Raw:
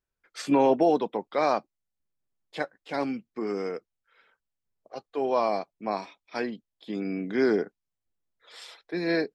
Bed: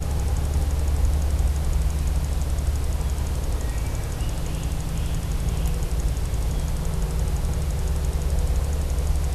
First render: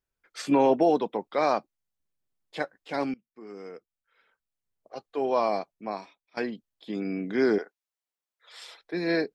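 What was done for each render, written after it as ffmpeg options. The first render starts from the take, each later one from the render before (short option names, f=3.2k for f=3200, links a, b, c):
-filter_complex "[0:a]asettb=1/sr,asplit=3[a][b][c];[a]atrim=end=7.584[d];[b]atrim=start=7.58:end=8.62,asetpts=PTS-STARTPTS,afade=t=in:d=0.004:c=qsin,afade=t=out:st=1.036:d=0.004:c=qsin,highpass=640[e];[c]atrim=start=8.616[f];[d][e]acrossfade=d=0.004:c1=hsin:c2=qsin[g];[g][f]acrossfade=d=0.004:c1=qsin:c2=hsin,asplit=3[h][i][j];[h]atrim=end=3.14,asetpts=PTS-STARTPTS,afade=t=out:st=3.136:d=0.004:c=hsin:silence=0.0668344[k];[i]atrim=start=3.14:end=6.37,asetpts=PTS-STARTPTS,afade=t=in:d=1.96:silence=0.0668344,afade=t=out:st=2.46:d=0.77:silence=0.11885[l];[j]atrim=start=6.37,asetpts=PTS-STARTPTS,afade=t=in:d=0.004:c=hsin:silence=0.11885[m];[k][l][m]concat=n=3:v=0:a=1"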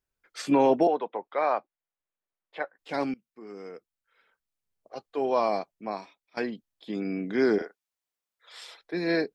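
-filter_complex "[0:a]asettb=1/sr,asplit=3[a][b][c];[a]atrim=end=0.874[d];[b]atrim=start=0.87:end=2.79,asetpts=PTS-STARTPTS,afade=t=in:d=0.004:c=qsin,afade=t=out:st=1.916:d=0.004:c=qsin,acrossover=split=420 3000:gain=0.178 1 0.0631[e][f][g];[e][f][g]amix=inputs=3:normalize=0[h];[c]atrim=start=2.786[i];[d][h]acrossfade=d=0.004:c1=hsin:c2=qsin[j];[j][i]acrossfade=d=0.004:c1=qsin:c2=hsin,asettb=1/sr,asplit=3[k][l][m];[k]atrim=end=7.574[n];[l]atrim=start=7.57:end=8.61,asetpts=PTS-STARTPTS,afade=t=in:d=0.004:c=qsin,afade=t=out:st=1.036:d=0.004:c=qsin,asplit=2[o][p];[p]adelay=37,volume=-4dB[q];[o][q]amix=inputs=2:normalize=0,atrim=end_sample=45864[r];[m]atrim=start=8.606[s];[n][r]acrossfade=d=0.004:c1=hsin:c2=qsin[t];[t][s]acrossfade=d=0.004:c1=qsin:c2=hsin"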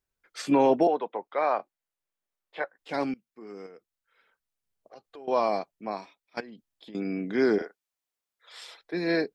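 -filter_complex "[0:a]asettb=1/sr,asplit=3[a][b][c];[a]atrim=end=1.574[d];[b]atrim=start=1.57:end=2.64,asetpts=PTS-STARTPTS,afade=t=in:d=0.004:c=qsin,afade=t=out:st=1.066:d=0.004:c=qsin,asplit=2[e][f];[f]adelay=22,volume=-4.5dB[g];[e][g]amix=inputs=2:normalize=0,atrim=end_sample=47187[h];[c]atrim=start=2.636[i];[d][h]acrossfade=d=0.004:c1=hsin:c2=qsin[j];[j][i]acrossfade=d=0.004:c1=qsin:c2=hsin,asettb=1/sr,asplit=3[k][l][m];[k]atrim=end=3.664[n];[l]atrim=start=3.66:end=5.28,asetpts=PTS-STARTPTS,afade=t=in:d=0.004:c=qsin,afade=t=out:st=1.616:d=0.004:c=qsin,acompressor=threshold=-45dB:ratio=4:attack=3.2:release=140:knee=1:detection=peak[o];[m]atrim=start=5.276[p];[n][o]acrossfade=d=0.004:c1=hsin:c2=qsin[q];[q][p]acrossfade=d=0.004:c1=qsin:c2=hsin,asettb=1/sr,asplit=3[r][s][t];[r]atrim=end=6.404[u];[s]atrim=start=6.4:end=6.95,asetpts=PTS-STARTPTS,afade=t=in:d=0.004:c=qsin,afade=t=out:st=0.546:d=0.004:c=qsin,acompressor=threshold=-42dB:ratio=8:attack=3.2:release=140:knee=1:detection=peak[v];[t]atrim=start=6.946[w];[u][v]acrossfade=d=0.004:c1=hsin:c2=qsin[x];[x][w]acrossfade=d=0.004:c1=qsin:c2=hsin"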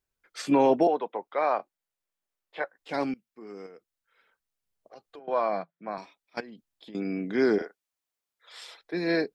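-filter_complex "[0:a]asettb=1/sr,asplit=3[a][b][c];[a]atrim=end=5.194[d];[b]atrim=start=5.19:end=5.98,asetpts=PTS-STARTPTS,afade=t=in:d=0.004:c=qsin,afade=t=out:st=0.786:d=0.004:c=qsin,highpass=f=160:w=0.5412,highpass=f=160:w=1.3066,equalizer=f=170:t=q:w=4:g=10,equalizer=f=240:t=q:w=4:g=-10,equalizer=f=400:t=q:w=4:g=-7,equalizer=f=850:t=q:w=4:g=-4,equalizer=f=1.5k:t=q:w=4:g=7,equalizer=f=2.8k:t=q:w=4:g=-9,lowpass=f=3.5k:w=0.5412,lowpass=f=3.5k:w=1.3066[e];[c]atrim=start=5.976[f];[d][e]acrossfade=d=0.004:c1=hsin:c2=qsin[g];[g][f]acrossfade=d=0.004:c1=qsin:c2=hsin"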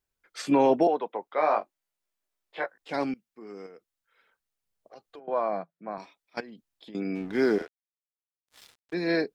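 -filter_complex "[0:a]asettb=1/sr,asplit=3[a][b][c];[a]atrim=end=1.344[d];[b]atrim=start=1.34:end=2.78,asetpts=PTS-STARTPTS,afade=t=in:d=0.004:c=qsin,afade=t=out:st=1.436:d=0.004:c=qsin,asplit=2[e][f];[f]adelay=19,volume=-3.5dB[g];[e][g]amix=inputs=2:normalize=0,atrim=end_sample=63504[h];[c]atrim=start=2.776[i];[d][h]acrossfade=d=0.004:c1=hsin:c2=qsin[j];[j][i]acrossfade=d=0.004:c1=qsin:c2=hsin,asettb=1/sr,asplit=3[k][l][m];[k]atrim=end=5.204[n];[l]atrim=start=5.2:end=6,asetpts=PTS-STARTPTS,afade=t=in:d=0.004:c=qsin,afade=t=out:st=0.796:d=0.004:c=qsin,highshelf=f=2.3k:g=-11.5[o];[m]atrim=start=5.996[p];[n][o]acrossfade=d=0.004:c1=hsin:c2=qsin[q];[q][p]acrossfade=d=0.004:c1=qsin:c2=hsin,asplit=3[r][s][t];[r]afade=t=out:st=7.14:d=0.02[u];[s]aeval=exprs='sgn(val(0))*max(abs(val(0))-0.00631,0)':c=same,afade=t=in:st=7.14:d=0.02,afade=t=out:st=8.93:d=0.02[v];[t]afade=t=in:st=8.93:d=0.02[w];[u][v][w]amix=inputs=3:normalize=0"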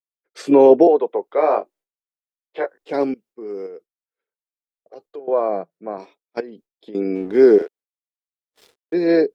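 -af "agate=range=-33dB:threshold=-51dB:ratio=3:detection=peak,equalizer=f=420:t=o:w=1.2:g=15"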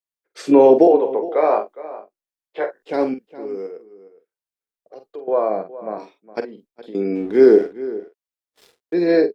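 -filter_complex "[0:a]asplit=2[a][b];[b]adelay=46,volume=-9dB[c];[a][c]amix=inputs=2:normalize=0,asplit=2[d][e];[e]adelay=414,volume=-16dB,highshelf=f=4k:g=-9.32[f];[d][f]amix=inputs=2:normalize=0"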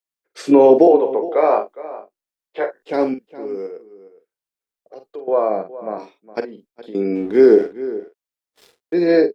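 -af "volume=1.5dB,alimiter=limit=-2dB:level=0:latency=1"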